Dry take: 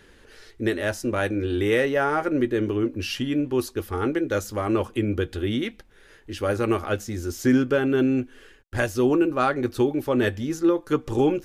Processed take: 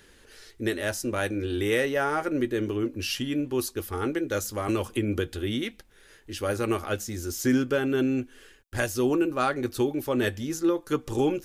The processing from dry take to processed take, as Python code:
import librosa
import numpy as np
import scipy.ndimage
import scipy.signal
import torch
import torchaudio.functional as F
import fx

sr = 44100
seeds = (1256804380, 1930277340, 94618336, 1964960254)

y = fx.high_shelf(x, sr, hz=4300.0, db=10.0)
y = fx.band_squash(y, sr, depth_pct=100, at=(4.68, 5.3))
y = F.gain(torch.from_numpy(y), -4.0).numpy()